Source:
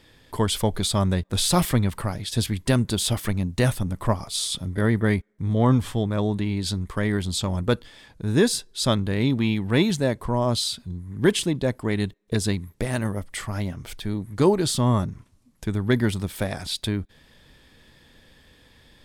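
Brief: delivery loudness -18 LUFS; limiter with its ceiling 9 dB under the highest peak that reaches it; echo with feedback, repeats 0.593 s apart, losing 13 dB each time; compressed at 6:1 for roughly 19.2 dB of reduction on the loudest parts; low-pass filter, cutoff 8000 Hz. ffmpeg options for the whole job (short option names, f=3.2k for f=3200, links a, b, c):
-af "lowpass=8k,acompressor=threshold=-35dB:ratio=6,alimiter=level_in=4dB:limit=-24dB:level=0:latency=1,volume=-4dB,aecho=1:1:593|1186|1779:0.224|0.0493|0.0108,volume=22dB"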